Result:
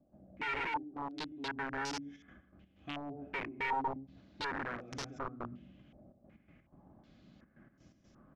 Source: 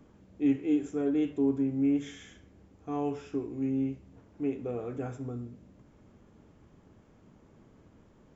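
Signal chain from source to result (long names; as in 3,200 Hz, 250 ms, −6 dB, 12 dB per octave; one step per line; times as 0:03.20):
gate pattern ".xxxxxx.x.x" 125 BPM −12 dB
treble cut that deepens with the level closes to 680 Hz, closed at −27.5 dBFS
graphic EQ with 15 bands 100 Hz −6 dB, 400 Hz −6 dB, 1,000 Hz −9 dB
slap from a distant wall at 20 metres, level −12 dB
0:00.73–0:03.22: downward compressor 4 to 1, threshold −40 dBFS, peak gain reduction 12.5 dB
hard clipping −37.5 dBFS, distortion −4 dB
notch comb filter 460 Hz
wrap-around overflow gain 37.5 dB
low-pass on a step sequencer 2.7 Hz 670–5,600 Hz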